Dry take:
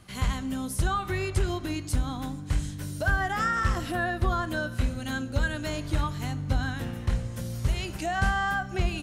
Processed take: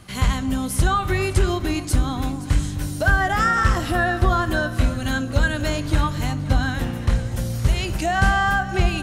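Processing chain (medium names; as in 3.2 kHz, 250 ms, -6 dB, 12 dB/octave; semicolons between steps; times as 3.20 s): echo whose repeats swap between lows and highs 261 ms, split 1 kHz, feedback 61%, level -11.5 dB; trim +7.5 dB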